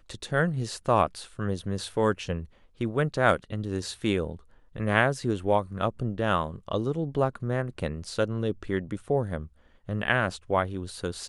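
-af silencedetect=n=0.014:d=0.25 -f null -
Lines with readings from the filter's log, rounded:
silence_start: 2.44
silence_end: 2.81 | silence_duration: 0.36
silence_start: 4.36
silence_end: 4.76 | silence_duration: 0.39
silence_start: 9.46
silence_end: 9.89 | silence_duration: 0.43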